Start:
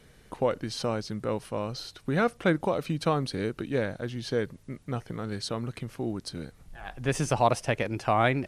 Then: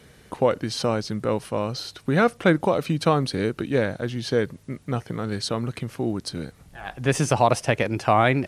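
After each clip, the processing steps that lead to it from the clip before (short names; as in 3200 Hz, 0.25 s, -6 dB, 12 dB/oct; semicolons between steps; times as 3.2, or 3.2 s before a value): HPF 59 Hz; maximiser +11 dB; gain -5 dB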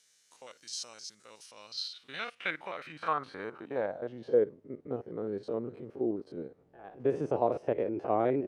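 stepped spectrum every 50 ms; band-pass sweep 6500 Hz -> 420 Hz, 1.34–4.51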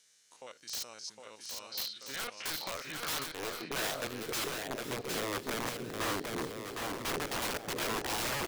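wrapped overs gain 31 dB; on a send: bouncing-ball echo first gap 0.76 s, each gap 0.75×, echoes 5; on the sum: gain +1 dB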